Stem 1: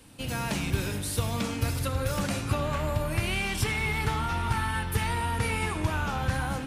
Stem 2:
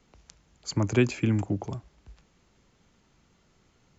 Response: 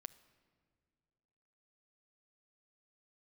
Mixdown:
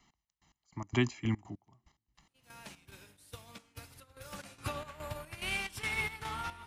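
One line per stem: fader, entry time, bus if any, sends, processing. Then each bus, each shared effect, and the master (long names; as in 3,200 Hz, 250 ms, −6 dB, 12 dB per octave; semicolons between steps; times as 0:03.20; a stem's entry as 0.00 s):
0:04.22 −10 dB → 0:04.51 −1 dB, 2.15 s, no send, low-shelf EQ 450 Hz −10 dB; expander for the loud parts 2.5 to 1, over −43 dBFS
−3.0 dB, 0.00 s, send −21.5 dB, low-shelf EQ 290 Hz −10 dB; comb filter 1 ms, depth 88%; gate pattern "x...x..x.xxxx." 145 BPM −24 dB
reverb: on, pre-delay 7 ms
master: square-wave tremolo 2.4 Hz, depth 65%, duty 60%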